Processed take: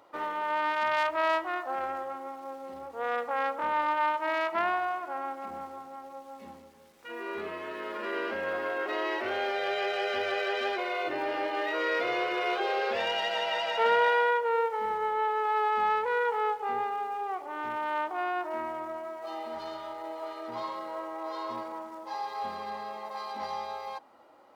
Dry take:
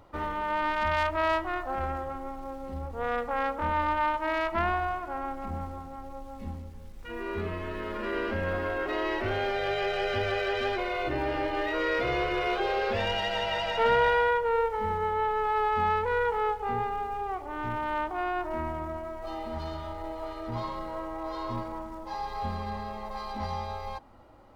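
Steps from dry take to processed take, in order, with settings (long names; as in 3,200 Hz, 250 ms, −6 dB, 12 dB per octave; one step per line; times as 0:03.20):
high-pass filter 380 Hz 12 dB per octave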